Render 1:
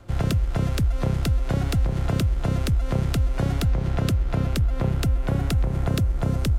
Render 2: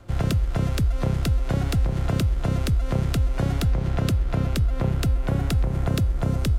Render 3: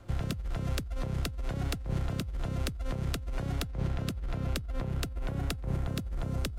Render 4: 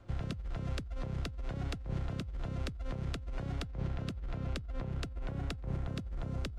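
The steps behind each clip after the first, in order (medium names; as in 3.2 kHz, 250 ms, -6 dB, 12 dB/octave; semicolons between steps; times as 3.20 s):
de-hum 426.5 Hz, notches 27
compressor with a negative ratio -24 dBFS, ratio -0.5; trim -7.5 dB
distance through air 69 m; trim -4.5 dB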